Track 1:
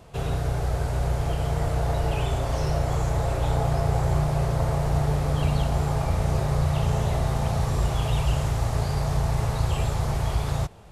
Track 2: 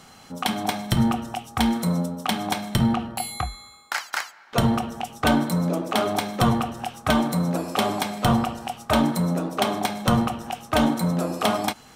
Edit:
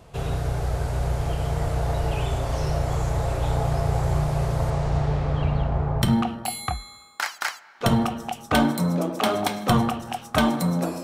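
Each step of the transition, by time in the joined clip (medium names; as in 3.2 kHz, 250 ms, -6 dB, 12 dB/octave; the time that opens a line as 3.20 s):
track 1
4.70–6.02 s: low-pass 8.3 kHz -> 1.2 kHz
6.02 s: go over to track 2 from 2.74 s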